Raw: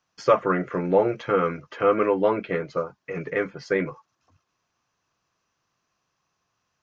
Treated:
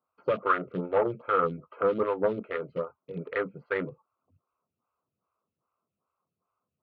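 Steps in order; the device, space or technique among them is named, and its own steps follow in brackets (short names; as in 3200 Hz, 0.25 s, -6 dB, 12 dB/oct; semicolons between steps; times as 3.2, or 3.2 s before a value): Wiener smoothing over 25 samples; 1.22–2.42 dynamic EQ 1700 Hz, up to -4 dB, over -37 dBFS, Q 1.2; vibe pedal into a guitar amplifier (photocell phaser 2.5 Hz; tube stage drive 14 dB, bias 0.25; speaker cabinet 76–3600 Hz, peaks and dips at 140 Hz -3 dB, 320 Hz -6 dB, 770 Hz -4 dB, 1300 Hz +9 dB)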